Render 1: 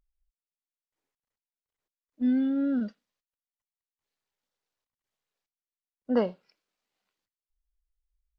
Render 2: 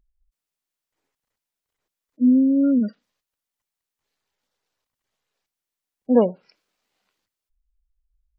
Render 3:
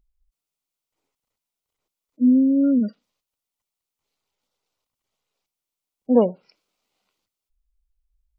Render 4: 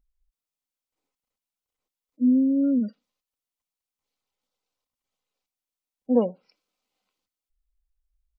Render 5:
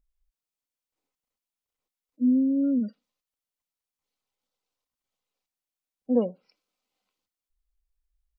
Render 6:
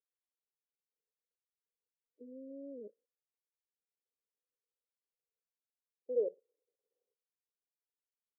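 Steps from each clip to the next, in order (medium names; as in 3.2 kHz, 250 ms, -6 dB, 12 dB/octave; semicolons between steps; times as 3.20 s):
spectral gate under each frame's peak -25 dB strong; trim +9 dB
peaking EQ 1.7 kHz -11 dB 0.31 oct
comb 3.9 ms, depth 31%; trim -6 dB
dynamic bell 900 Hz, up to -7 dB, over -44 dBFS, Q 2.3; trim -2 dB
level held to a coarse grid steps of 17 dB; Butterworth band-pass 450 Hz, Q 3.9; trim +9 dB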